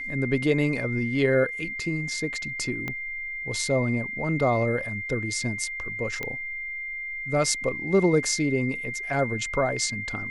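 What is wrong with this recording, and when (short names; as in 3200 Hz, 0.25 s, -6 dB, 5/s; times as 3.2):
tone 2100 Hz -31 dBFS
2.88 pop -17 dBFS
6.23 pop -16 dBFS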